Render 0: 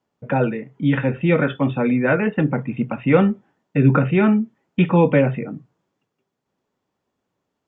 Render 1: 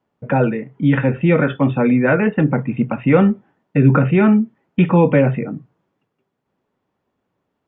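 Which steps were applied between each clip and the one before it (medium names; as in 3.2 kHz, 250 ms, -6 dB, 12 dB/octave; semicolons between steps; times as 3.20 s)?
tone controls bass +1 dB, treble -12 dB; in parallel at -3 dB: peak limiter -11 dBFS, peak gain reduction 8.5 dB; on the sum: trim -1 dB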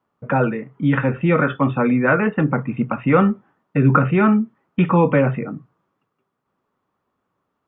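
peaking EQ 1.2 kHz +10.5 dB 0.54 oct; trim -3 dB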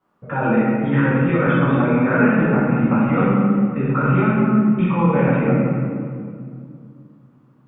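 reverse; compression, threshold -23 dBFS, peak gain reduction 13.5 dB; reverse; reverberation RT60 2.3 s, pre-delay 5 ms, DRR -10.5 dB; trim -1.5 dB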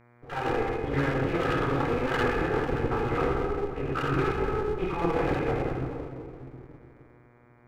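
comb filter that takes the minimum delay 2.4 ms; mains buzz 120 Hz, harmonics 20, -51 dBFS -4 dB/octave; trim -7.5 dB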